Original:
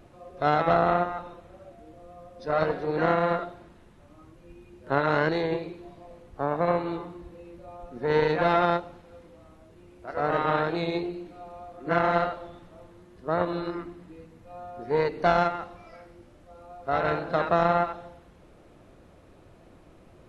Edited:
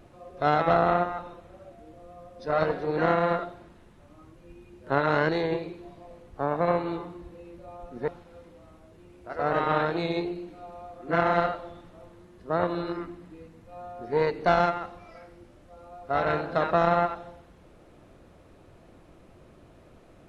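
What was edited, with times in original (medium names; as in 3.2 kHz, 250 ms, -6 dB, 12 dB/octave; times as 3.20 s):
8.08–8.86 s: delete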